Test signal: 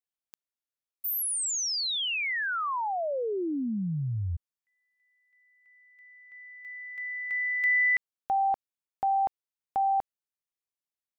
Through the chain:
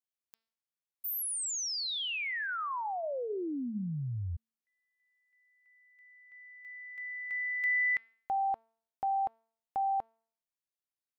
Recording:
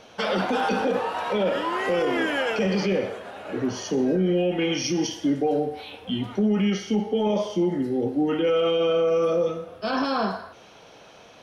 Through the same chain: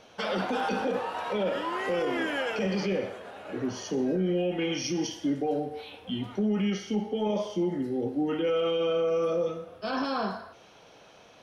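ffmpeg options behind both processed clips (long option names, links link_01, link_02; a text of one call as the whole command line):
ffmpeg -i in.wav -af "bandreject=frequency=225.4:width_type=h:width=4,bandreject=frequency=450.8:width_type=h:width=4,bandreject=frequency=676.2:width_type=h:width=4,bandreject=frequency=901.6:width_type=h:width=4,bandreject=frequency=1127:width_type=h:width=4,bandreject=frequency=1352.4:width_type=h:width=4,bandreject=frequency=1577.8:width_type=h:width=4,bandreject=frequency=1803.2:width_type=h:width=4,bandreject=frequency=2028.6:width_type=h:width=4,bandreject=frequency=2254:width_type=h:width=4,bandreject=frequency=2479.4:width_type=h:width=4,bandreject=frequency=2704.8:width_type=h:width=4,bandreject=frequency=2930.2:width_type=h:width=4,bandreject=frequency=3155.6:width_type=h:width=4,bandreject=frequency=3381:width_type=h:width=4,bandreject=frequency=3606.4:width_type=h:width=4,bandreject=frequency=3831.8:width_type=h:width=4,bandreject=frequency=4057.2:width_type=h:width=4,bandreject=frequency=4282.6:width_type=h:width=4,bandreject=frequency=4508:width_type=h:width=4,bandreject=frequency=4733.4:width_type=h:width=4,bandreject=frequency=4958.8:width_type=h:width=4,bandreject=frequency=5184.2:width_type=h:width=4,bandreject=frequency=5409.6:width_type=h:width=4,volume=-5dB" out.wav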